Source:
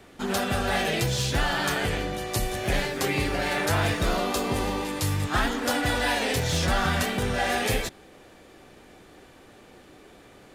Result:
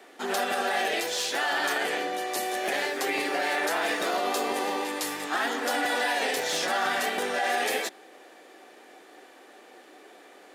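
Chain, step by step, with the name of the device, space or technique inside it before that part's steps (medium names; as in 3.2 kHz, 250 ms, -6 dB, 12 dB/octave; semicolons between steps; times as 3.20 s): laptop speaker (high-pass 300 Hz 24 dB/octave; peaking EQ 750 Hz +5 dB 0.24 oct; peaking EQ 1.8 kHz +4 dB 0.29 oct; peak limiter -17.5 dBFS, peak gain reduction 6 dB); 0.94–1.52 s: peaking EQ 140 Hz -6 dB 2 oct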